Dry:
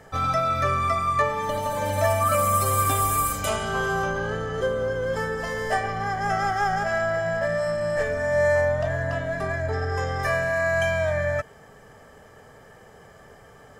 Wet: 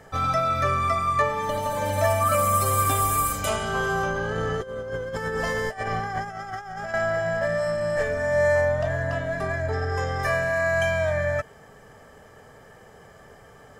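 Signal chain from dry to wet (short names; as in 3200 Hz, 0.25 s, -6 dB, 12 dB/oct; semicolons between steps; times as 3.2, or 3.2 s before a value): 4.32–6.94 negative-ratio compressor -29 dBFS, ratio -0.5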